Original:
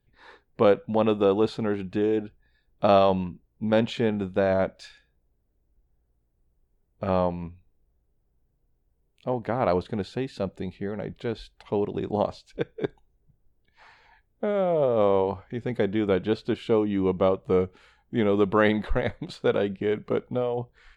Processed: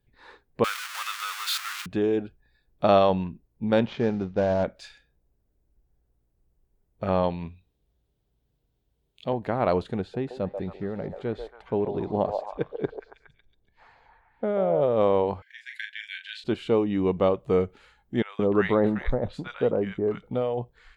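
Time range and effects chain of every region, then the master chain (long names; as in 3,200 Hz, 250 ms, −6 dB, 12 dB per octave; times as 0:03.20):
0:00.64–0:01.86: converter with a step at zero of −21.5 dBFS + Chebyshev high-pass filter 1,200 Hz, order 4
0:03.87–0:04.64: variable-slope delta modulation 32 kbit/s + low-pass filter 2,200 Hz 6 dB per octave + one half of a high-frequency compander decoder only
0:07.23–0:09.33: high-pass filter 44 Hz + parametric band 3,500 Hz +12 dB 0.87 octaves
0:10.00–0:14.81: high-shelf EQ 2,300 Hz −10.5 dB + echo through a band-pass that steps 138 ms, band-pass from 660 Hz, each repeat 0.7 octaves, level −3 dB
0:15.42–0:16.44: linear-phase brick-wall high-pass 1,500 Hz + parametric band 2,200 Hz +2.5 dB 1.5 octaves + double-tracking delay 37 ms −6 dB
0:18.22–0:20.23: high-shelf EQ 3,200 Hz −8 dB + three-band delay without the direct sound mids, highs, lows 30/170 ms, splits 1,200/3,800 Hz
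whole clip: no processing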